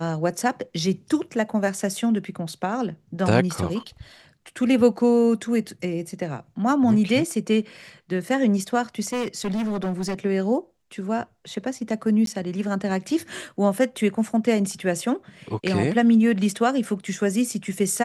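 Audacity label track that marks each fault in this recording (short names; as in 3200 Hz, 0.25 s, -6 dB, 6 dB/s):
9.050000	10.140000	clipped -22.5 dBFS
12.260000	12.270000	gap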